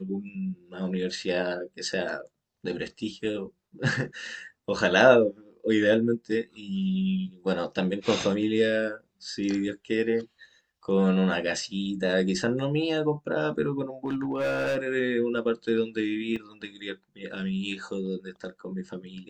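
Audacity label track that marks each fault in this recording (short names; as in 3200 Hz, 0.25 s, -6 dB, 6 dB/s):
14.050000	14.770000	clipped -24 dBFS
16.360000	16.360000	gap 4.4 ms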